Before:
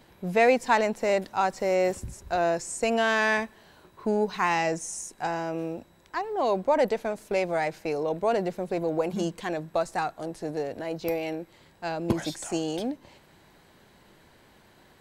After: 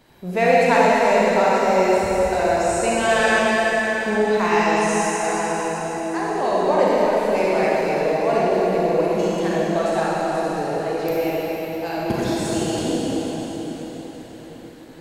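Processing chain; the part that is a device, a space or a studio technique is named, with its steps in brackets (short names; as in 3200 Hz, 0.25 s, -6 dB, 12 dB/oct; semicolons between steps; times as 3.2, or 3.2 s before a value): cathedral (reverb RT60 5.1 s, pre-delay 31 ms, DRR -7.5 dB)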